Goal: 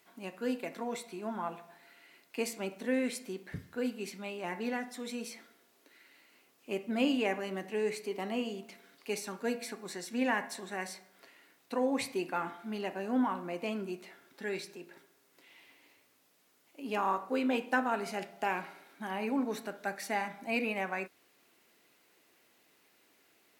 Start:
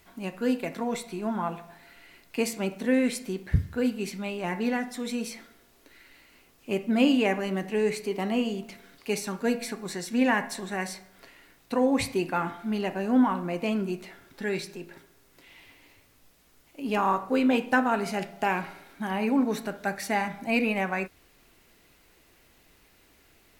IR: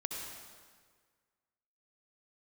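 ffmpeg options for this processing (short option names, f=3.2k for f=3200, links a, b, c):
-af "highpass=240,volume=-6dB"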